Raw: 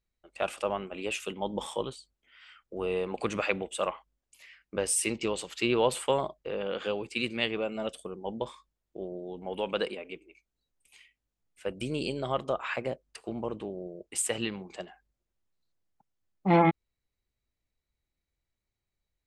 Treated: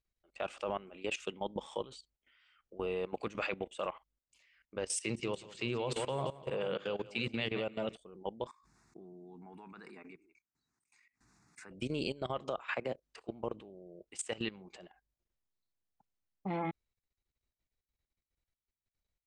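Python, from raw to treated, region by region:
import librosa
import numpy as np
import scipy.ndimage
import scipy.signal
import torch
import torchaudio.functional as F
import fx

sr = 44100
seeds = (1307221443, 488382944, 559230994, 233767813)

y = fx.chain(x, sr, fx.peak_eq(hz=130.0, db=9.0, octaves=0.74),
    fx.hum_notches(base_hz=50, count=8),
    fx.echo_feedback(ms=173, feedback_pct=41, wet_db=-11.5), at=(4.99, 7.96))
y = fx.chain(y, sr, fx.highpass(hz=140.0, slope=12),
    fx.fixed_phaser(hz=1300.0, stages=4),
    fx.pre_swell(db_per_s=54.0), at=(8.47, 11.71))
y = fx.chain(y, sr, fx.low_shelf(hz=100.0, db=-6.5),
    fx.band_squash(depth_pct=70), at=(12.4, 13.22))
y = scipy.signal.sosfilt(scipy.signal.butter(4, 7500.0, 'lowpass', fs=sr, output='sos'), y)
y = fx.level_steps(y, sr, step_db=17)
y = F.gain(torch.from_numpy(y), -1.0).numpy()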